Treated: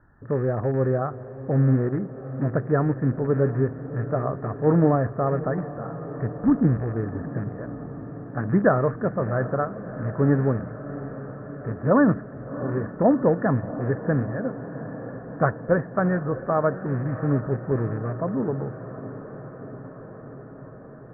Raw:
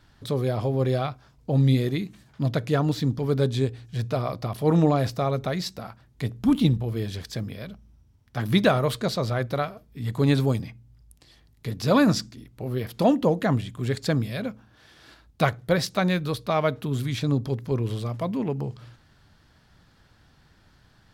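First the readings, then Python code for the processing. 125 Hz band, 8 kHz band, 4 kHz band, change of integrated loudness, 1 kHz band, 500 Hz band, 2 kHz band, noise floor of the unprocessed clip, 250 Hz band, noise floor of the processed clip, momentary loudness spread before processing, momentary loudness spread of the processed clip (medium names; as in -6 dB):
+0.5 dB, under -35 dB, under -40 dB, +0.5 dB, +1.0 dB, +2.5 dB, -0.5 dB, -59 dBFS, +1.0 dB, -41 dBFS, 13 LU, 16 LU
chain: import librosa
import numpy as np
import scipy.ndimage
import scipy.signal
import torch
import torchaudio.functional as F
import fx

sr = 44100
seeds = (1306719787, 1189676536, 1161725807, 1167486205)

y = fx.rattle_buzz(x, sr, strikes_db=-26.0, level_db=-22.0)
y = scipy.signal.sosfilt(scipy.signal.cheby1(6, 3, 1800.0, 'lowpass', fs=sr, output='sos'), y)
y = fx.echo_diffused(y, sr, ms=709, feedback_pct=74, wet_db=-14.0)
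y = F.gain(torch.from_numpy(y), 2.5).numpy()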